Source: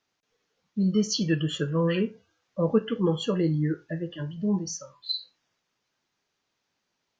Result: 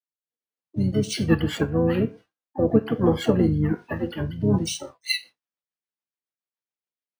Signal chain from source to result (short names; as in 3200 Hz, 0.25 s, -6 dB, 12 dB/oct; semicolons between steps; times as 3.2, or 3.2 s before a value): expander -41 dBFS; HPF 340 Hz 6 dB/oct; dynamic EQ 3300 Hz, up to -7 dB, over -48 dBFS, Q 1.1; in parallel at -1 dB: vocal rider 2 s; on the sum: rotary speaker horn 1.2 Hz, later 7 Hz, at 4.39; harmoniser -12 st -6 dB, -7 st -6 dB, +7 st -14 dB; decimation joined by straight lines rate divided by 3×; gain +3 dB